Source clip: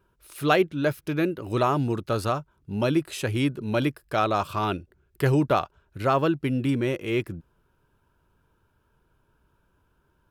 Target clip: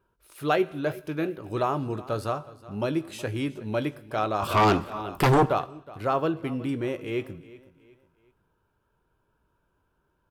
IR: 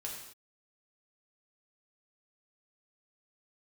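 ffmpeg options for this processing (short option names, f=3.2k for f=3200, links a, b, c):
-filter_complex "[0:a]asplit=2[a][b];[b]adelay=19,volume=-13dB[c];[a][c]amix=inputs=2:normalize=0,aecho=1:1:368|736|1104:0.112|0.0426|0.0162,asplit=3[d][e][f];[d]afade=t=out:st=4.42:d=0.02[g];[e]aeval=exprs='0.282*sin(PI/2*3.16*val(0)/0.282)':c=same,afade=t=in:st=4.42:d=0.02,afade=t=out:st=5.46:d=0.02[h];[f]afade=t=in:st=5.46:d=0.02[i];[g][h][i]amix=inputs=3:normalize=0,equalizer=f=660:w=0.53:g=4.5,asplit=2[j][k];[1:a]atrim=start_sample=2205[l];[k][l]afir=irnorm=-1:irlink=0,volume=-13dB[m];[j][m]amix=inputs=2:normalize=0,volume=-8dB"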